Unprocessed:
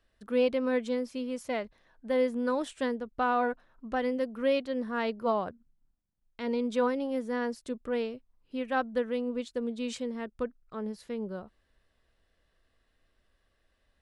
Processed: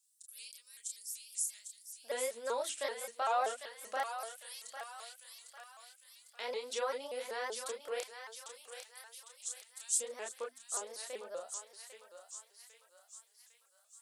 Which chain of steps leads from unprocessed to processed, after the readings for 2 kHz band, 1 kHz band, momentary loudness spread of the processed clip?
-7.0 dB, -5.5 dB, 19 LU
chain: high-pass 180 Hz; bass shelf 440 Hz +11 dB; hum notches 60/120/180/240/300 Hz; LFO high-pass square 0.25 Hz 580–7800 Hz; in parallel at -1 dB: compression, threshold -32 dBFS, peak gain reduction 16.5 dB; on the sum: chorus voices 2, 0.63 Hz, delay 30 ms, depth 4.4 ms; differentiator; on a send: thinning echo 801 ms, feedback 56%, high-pass 1 kHz, level -6.5 dB; on the sum: vibrato with a chosen wave saw up 5.2 Hz, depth 160 cents; trim +8 dB

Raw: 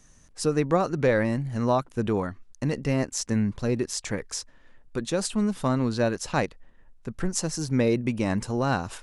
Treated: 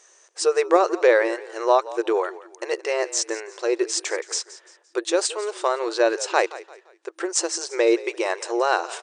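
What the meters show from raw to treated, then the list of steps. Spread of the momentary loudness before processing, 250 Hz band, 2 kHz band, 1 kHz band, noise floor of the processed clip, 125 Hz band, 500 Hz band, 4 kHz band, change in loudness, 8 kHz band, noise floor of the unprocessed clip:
10 LU, -4.0 dB, +6.5 dB, +6.5 dB, -58 dBFS, under -40 dB, +6.5 dB, +6.5 dB, +4.0 dB, +6.5 dB, -56 dBFS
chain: frequency-shifting echo 172 ms, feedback 37%, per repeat -46 Hz, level -17 dB; FFT band-pass 330–9200 Hz; trim +6.5 dB

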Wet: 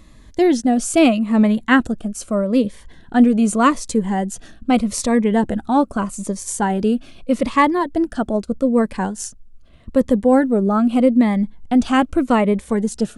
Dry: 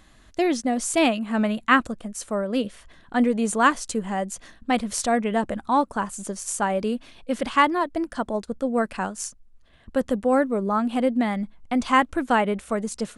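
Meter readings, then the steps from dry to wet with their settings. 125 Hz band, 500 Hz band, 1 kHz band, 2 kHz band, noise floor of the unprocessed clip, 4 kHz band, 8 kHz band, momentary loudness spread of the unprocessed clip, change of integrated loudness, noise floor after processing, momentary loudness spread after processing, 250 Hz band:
+9.5 dB, +5.5 dB, +2.0 dB, +1.0 dB, -53 dBFS, +2.0 dB, +3.0 dB, 10 LU, +6.0 dB, -45 dBFS, 10 LU, +9.0 dB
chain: tilt shelf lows +3.5 dB, about 680 Hz; Shepard-style phaser falling 0.81 Hz; trim +6.5 dB

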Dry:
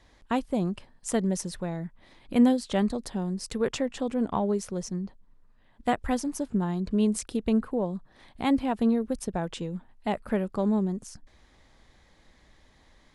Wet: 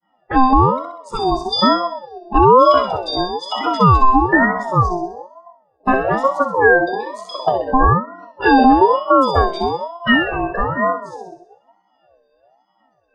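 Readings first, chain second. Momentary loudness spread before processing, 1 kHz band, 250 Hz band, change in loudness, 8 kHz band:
10 LU, +21.5 dB, +6.5 dB, +13.0 dB, no reading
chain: drifting ripple filter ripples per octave 1.9, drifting +2.6 Hz, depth 12 dB; dynamic bell 4.3 kHz, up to +4 dB, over -51 dBFS, Q 1.3; expander -57 dBFS; peaking EQ 1.2 kHz +12 dB 0.3 oct; in parallel at -1 dB: compression, threshold -34 dBFS, peak gain reduction 19 dB; on the sum: resampled via 22.05 kHz; simulated room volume 1600 m³, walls mixed, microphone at 0.88 m; spectral noise reduction 26 dB; pitch-class resonator C, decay 0.49 s; on a send: feedback echo behind a high-pass 64 ms, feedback 52%, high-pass 2 kHz, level -4 dB; on the sum: loudness maximiser +33 dB; ring modulator with a swept carrier 690 Hz, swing 25%, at 1.1 Hz

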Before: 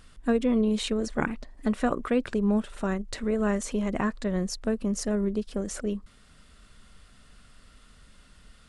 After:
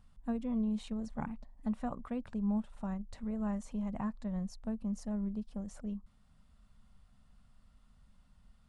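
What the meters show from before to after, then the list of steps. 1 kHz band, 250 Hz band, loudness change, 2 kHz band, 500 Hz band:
-11.0 dB, -8.0 dB, -10.0 dB, -19.5 dB, -18.0 dB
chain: FFT filter 220 Hz 0 dB, 360 Hz -16 dB, 850 Hz 0 dB, 1.5 kHz -12 dB; trim -7.5 dB

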